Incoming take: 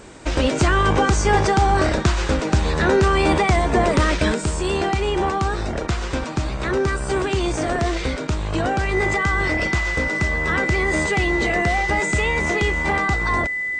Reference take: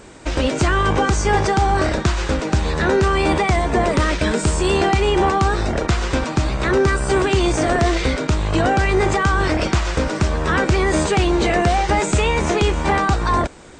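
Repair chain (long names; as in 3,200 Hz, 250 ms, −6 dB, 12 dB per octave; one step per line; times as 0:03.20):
notch filter 2,000 Hz, Q 30
level 0 dB, from 0:04.34 +4.5 dB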